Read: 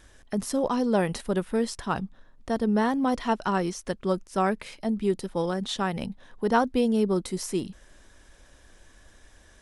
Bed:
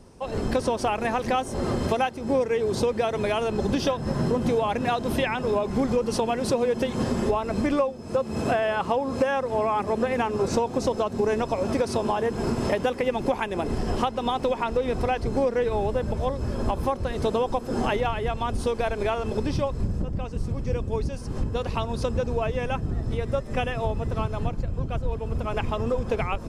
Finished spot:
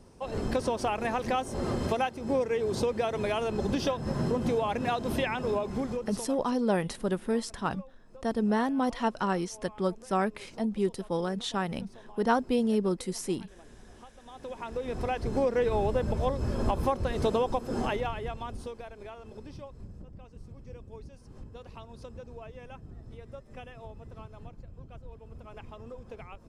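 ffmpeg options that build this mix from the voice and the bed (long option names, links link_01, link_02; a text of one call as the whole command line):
ffmpeg -i stem1.wav -i stem2.wav -filter_complex "[0:a]adelay=5750,volume=-3dB[link_01];[1:a]volume=20.5dB,afade=type=out:start_time=5.49:duration=0.91:silence=0.0749894,afade=type=in:start_time=14.26:duration=1.39:silence=0.0562341,afade=type=out:start_time=17.26:duration=1.61:silence=0.149624[link_02];[link_01][link_02]amix=inputs=2:normalize=0" out.wav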